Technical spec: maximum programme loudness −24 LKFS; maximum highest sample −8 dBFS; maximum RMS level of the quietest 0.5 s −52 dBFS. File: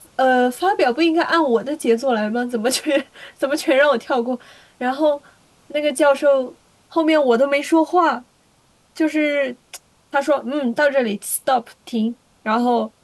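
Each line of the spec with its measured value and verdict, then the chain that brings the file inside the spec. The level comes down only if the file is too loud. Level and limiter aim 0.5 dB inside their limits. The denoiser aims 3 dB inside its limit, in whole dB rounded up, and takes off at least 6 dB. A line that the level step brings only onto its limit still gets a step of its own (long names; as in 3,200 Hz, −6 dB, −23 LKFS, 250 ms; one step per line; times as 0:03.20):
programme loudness −19.0 LKFS: out of spec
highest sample −5.0 dBFS: out of spec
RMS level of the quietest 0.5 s −58 dBFS: in spec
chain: level −5.5 dB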